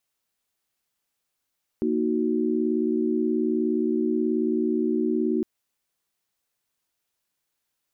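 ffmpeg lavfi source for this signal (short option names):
-f lavfi -i "aevalsrc='0.0531*(sin(2*PI*233.08*t)+sin(2*PI*311.13*t)+sin(2*PI*369.99*t))':d=3.61:s=44100"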